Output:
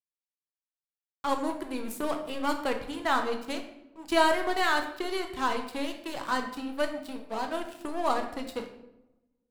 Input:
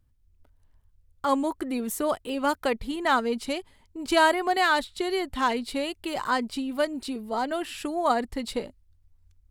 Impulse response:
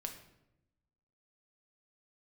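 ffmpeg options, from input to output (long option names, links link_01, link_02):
-filter_complex "[0:a]aeval=exprs='sgn(val(0))*max(abs(val(0))-0.0168,0)':channel_layout=same,aeval=exprs='0.335*(cos(1*acos(clip(val(0)/0.335,-1,1)))-cos(1*PI/2))+0.00841*(cos(8*acos(clip(val(0)/0.335,-1,1)))-cos(8*PI/2))':channel_layout=same[link_01];[1:a]atrim=start_sample=2205[link_02];[link_01][link_02]afir=irnorm=-1:irlink=0"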